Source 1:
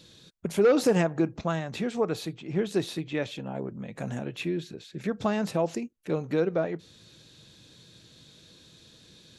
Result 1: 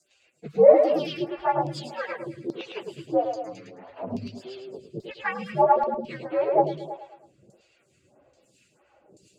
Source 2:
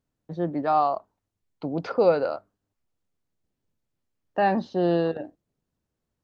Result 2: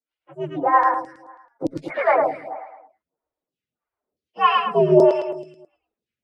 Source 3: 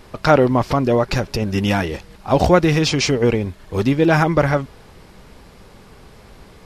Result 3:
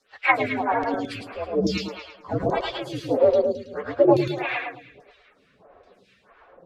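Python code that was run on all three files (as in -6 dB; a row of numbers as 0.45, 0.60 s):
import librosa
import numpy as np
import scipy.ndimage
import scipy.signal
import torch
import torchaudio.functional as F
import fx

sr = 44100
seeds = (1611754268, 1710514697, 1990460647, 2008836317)

y = fx.partial_stretch(x, sr, pct=126)
y = fx.low_shelf(y, sr, hz=96.0, db=7.5)
y = fx.dereverb_blind(y, sr, rt60_s=0.54)
y = fx.high_shelf(y, sr, hz=5100.0, db=-11.5)
y = fx.filter_lfo_bandpass(y, sr, shape='saw_down', hz=1.2, low_hz=430.0, high_hz=5300.0, q=1.8)
y = fx.rotary(y, sr, hz=6.0)
y = fx.echo_feedback(y, sr, ms=108, feedback_pct=48, wet_db=-3.5)
y = fx.stagger_phaser(y, sr, hz=1.6)
y = y * 10.0 ** (-3 / 20.0) / np.max(np.abs(y))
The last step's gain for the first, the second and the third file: +17.5, +20.5, +10.0 dB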